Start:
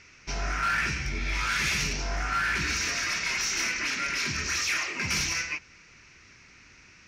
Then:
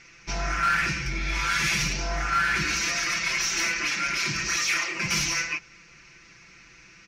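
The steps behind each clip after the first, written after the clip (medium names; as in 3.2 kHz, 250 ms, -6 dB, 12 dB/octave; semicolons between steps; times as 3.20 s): comb 5.9 ms, depth 85%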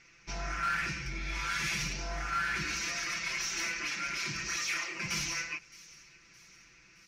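feedback echo behind a high-pass 617 ms, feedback 54%, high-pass 3.6 kHz, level -18 dB; trim -8.5 dB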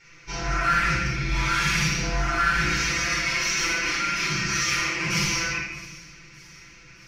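simulated room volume 810 m³, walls mixed, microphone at 4.5 m; trim +1 dB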